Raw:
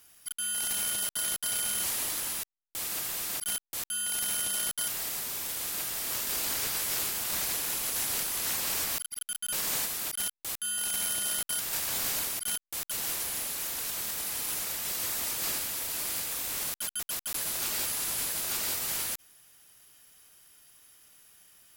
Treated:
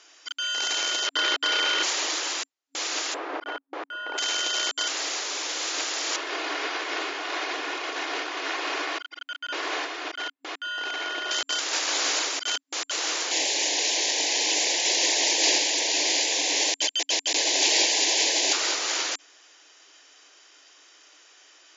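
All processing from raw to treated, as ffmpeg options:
ffmpeg -i in.wav -filter_complex "[0:a]asettb=1/sr,asplit=3[link_01][link_02][link_03];[link_01]atrim=end=1.074[link_04];[link_02]atrim=start=1.07:end=1.83,asetpts=PTS-STARTPTS,afade=type=in:duration=0.004:curve=qsin,afade=type=out:start_time=0.756:duration=0.004:curve=qsin,lowpass=3500,bandreject=frequency=700:width=5.6,acontrast=38[link_05];[link_03]atrim=start=1.826[link_06];[link_04][link_05]acrossfade=duration=0.004:curve1=hsin:curve2=qsin[link_07];[link_07][link_06]acrossfade=duration=0.004:curve1=qsin:curve2=hsin,asettb=1/sr,asplit=3[link_08][link_09][link_10];[link_08]atrim=end=3.144[link_11];[link_09]atrim=start=3.14:end=4.18,asetpts=PTS-STARTPTS,afade=type=in:duration=0.004:curve=qsin,afade=type=out:start_time=1.036:duration=0.004:curve=qsin,lowpass=1200,aemphasis=mode=reproduction:type=50fm,acontrast=34[link_12];[link_10]atrim=start=4.176[link_13];[link_11][link_12]acrossfade=duration=0.004:curve1=hsin:curve2=qsin[link_14];[link_14][link_13]acrossfade=duration=0.004:curve1=qsin:curve2=hsin,asettb=1/sr,asplit=3[link_15][link_16][link_17];[link_15]atrim=end=6.164[link_18];[link_16]atrim=start=6.16:end=11.31,asetpts=PTS-STARTPTS,afade=type=in:duration=0.004:curve=qsin,afade=type=out:start_time=5.146:duration=0.004:curve=qsin,lowpass=2500,aecho=1:1:2.8:0.32,atrim=end_sample=227115[link_19];[link_17]atrim=start=11.306[link_20];[link_18][link_19]acrossfade=duration=0.004:curve1=hsin:curve2=qsin[link_21];[link_21][link_20]acrossfade=duration=0.004:curve1=qsin:curve2=hsin,asettb=1/sr,asplit=3[link_22][link_23][link_24];[link_22]atrim=end=13.314[link_25];[link_23]atrim=start=13.31:end=18.53,asetpts=PTS-STARTPTS,afade=type=in:duration=0.004:curve=qsin,afade=type=out:start_time=5.216:duration=0.004:curve=qsin,asuperstop=centerf=1300:order=4:qfactor=1.4,acontrast=32[link_26];[link_24]atrim=start=18.526[link_27];[link_25][link_26]acrossfade=duration=0.004:curve1=hsin:curve2=qsin[link_28];[link_28][link_27]acrossfade=duration=0.004:curve1=qsin:curve2=hsin,afftfilt=real='re*between(b*sr/4096,270,7300)':imag='im*between(b*sr/4096,270,7300)':win_size=4096:overlap=0.75,acontrast=38,volume=5dB" out.wav

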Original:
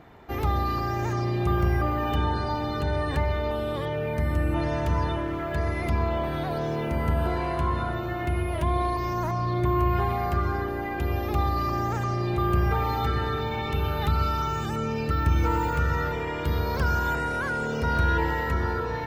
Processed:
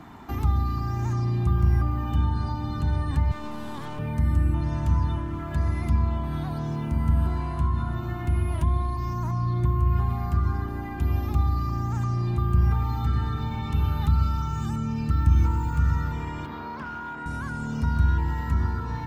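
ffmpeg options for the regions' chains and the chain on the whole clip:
ffmpeg -i in.wav -filter_complex "[0:a]asettb=1/sr,asplit=3[link_01][link_02][link_03];[link_01]atrim=end=3.314[link_04];[link_02]atrim=start=3.31:end=3.99,asetpts=PTS-STARTPTS,afade=type=in:duration=0.004:curve=qsin,afade=type=out:start_time=0.676:duration=0.004:curve=qsin,highpass=180,aeval=exprs='clip(val(0),-1,0.0119)':channel_layout=same[link_05];[link_03]atrim=start=3.986[link_06];[link_04][link_05]acrossfade=duration=0.004:curve1=hsin:curve2=qsin[link_07];[link_07][link_06]acrossfade=duration=0.004:curve1=qsin:curve2=hsin,asettb=1/sr,asplit=3[link_08][link_09][link_10];[link_08]atrim=end=16.454[link_11];[link_09]atrim=start=16.45:end=17.26,asetpts=PTS-STARTPTS,afade=type=in:duration=0.004:curve=qsin,afade=type=out:start_time=0.806:duration=0.004:curve=qsin,highpass=frequency=71:width=0.5412,highpass=frequency=71:width=1.3066,volume=22.5dB,asoftclip=hard,volume=-22.5dB,acrossover=split=230 3300:gain=0.0794 1 0.112[link_12][link_13][link_14];[link_12][link_13][link_14]amix=inputs=3:normalize=0[link_15];[link_10]atrim=start=17.256[link_16];[link_11][link_15]acrossfade=duration=0.004:curve1=hsin:curve2=qsin[link_17];[link_17][link_16]acrossfade=duration=0.004:curve1=qsin:curve2=hsin,equalizer=frequency=250:width_type=o:width=1:gain=9,equalizer=frequency=500:width_type=o:width=1:gain=-12,equalizer=frequency=1000:width_type=o:width=1:gain=7,equalizer=frequency=2000:width_type=o:width=1:gain=-3,equalizer=frequency=8000:width_type=o:width=1:gain=7,acrossover=split=160[link_18][link_19];[link_19]acompressor=threshold=-40dB:ratio=4[link_20];[link_18][link_20]amix=inputs=2:normalize=0,volume=4dB" out.wav

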